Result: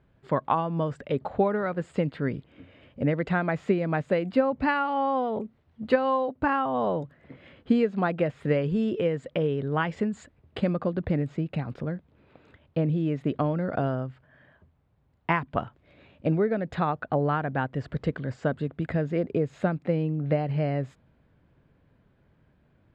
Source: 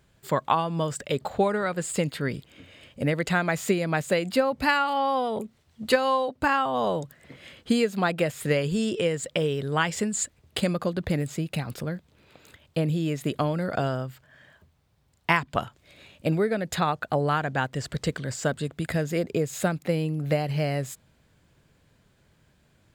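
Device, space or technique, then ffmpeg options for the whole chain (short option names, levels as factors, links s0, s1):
phone in a pocket: -af "lowpass=3100,equalizer=f=270:t=o:w=0.34:g=3,highshelf=f=2200:g=-11"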